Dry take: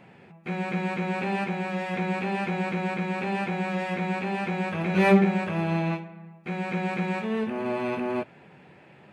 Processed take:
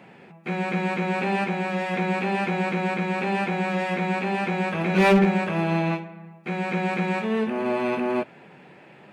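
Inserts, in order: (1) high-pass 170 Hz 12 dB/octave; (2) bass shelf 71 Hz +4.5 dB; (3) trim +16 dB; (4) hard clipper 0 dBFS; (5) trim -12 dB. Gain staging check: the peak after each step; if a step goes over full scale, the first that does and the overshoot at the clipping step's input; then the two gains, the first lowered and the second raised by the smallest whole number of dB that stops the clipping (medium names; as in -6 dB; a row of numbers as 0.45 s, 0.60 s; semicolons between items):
-8.5 dBFS, -8.5 dBFS, +7.5 dBFS, 0.0 dBFS, -12.0 dBFS; step 3, 7.5 dB; step 3 +8 dB, step 5 -4 dB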